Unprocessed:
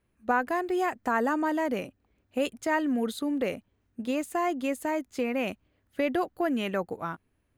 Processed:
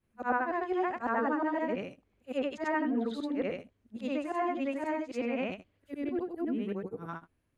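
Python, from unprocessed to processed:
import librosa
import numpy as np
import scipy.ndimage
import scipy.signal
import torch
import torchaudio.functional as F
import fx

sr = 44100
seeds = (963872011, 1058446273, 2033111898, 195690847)

y = fx.frame_reverse(x, sr, frame_ms=204.0)
y = fx.spec_box(y, sr, start_s=5.92, length_s=1.17, low_hz=500.0, high_hz=8200.0, gain_db=-12)
y = fx.env_lowpass_down(y, sr, base_hz=2300.0, full_db=-27.0)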